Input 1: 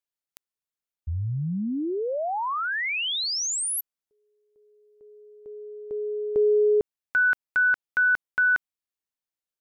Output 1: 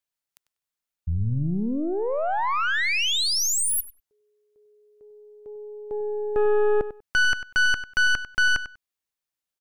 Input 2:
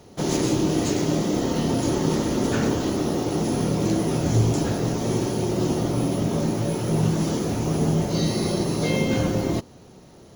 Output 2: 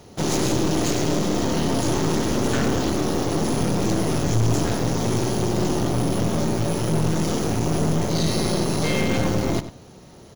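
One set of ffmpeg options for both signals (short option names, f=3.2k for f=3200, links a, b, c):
-filter_complex "[0:a]equalizer=f=340:t=o:w=2.1:g=-2.5,aeval=exprs='(tanh(17.8*val(0)+0.7)-tanh(0.7))/17.8':c=same,asplit=2[a][b];[b]adelay=97,lowpass=f=4.9k:p=1,volume=-12.5dB,asplit=2[c][d];[d]adelay=97,lowpass=f=4.9k:p=1,volume=0.17[e];[a][c][e]amix=inputs=3:normalize=0,volume=7.5dB"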